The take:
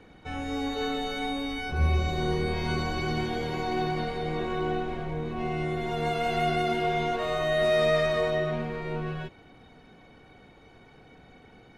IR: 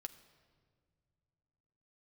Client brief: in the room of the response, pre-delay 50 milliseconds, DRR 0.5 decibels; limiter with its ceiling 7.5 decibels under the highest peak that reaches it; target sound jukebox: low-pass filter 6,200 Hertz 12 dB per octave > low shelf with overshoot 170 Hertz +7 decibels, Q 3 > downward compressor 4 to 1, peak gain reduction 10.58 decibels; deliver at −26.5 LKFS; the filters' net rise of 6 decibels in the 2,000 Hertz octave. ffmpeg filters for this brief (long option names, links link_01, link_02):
-filter_complex "[0:a]equalizer=frequency=2000:width_type=o:gain=7,alimiter=limit=-18.5dB:level=0:latency=1,asplit=2[link_01][link_02];[1:a]atrim=start_sample=2205,adelay=50[link_03];[link_02][link_03]afir=irnorm=-1:irlink=0,volume=4dB[link_04];[link_01][link_04]amix=inputs=2:normalize=0,lowpass=6200,lowshelf=frequency=170:width_type=q:width=3:gain=7,acompressor=threshold=-23dB:ratio=4,volume=0.5dB"